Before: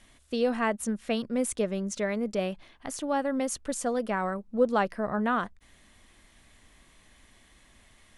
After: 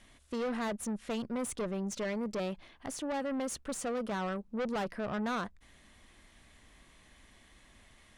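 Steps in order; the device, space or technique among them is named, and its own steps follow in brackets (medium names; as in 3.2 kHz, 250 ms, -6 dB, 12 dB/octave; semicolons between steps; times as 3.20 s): tube preamp driven hard (valve stage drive 31 dB, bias 0.3; treble shelf 7 kHz -4.5 dB)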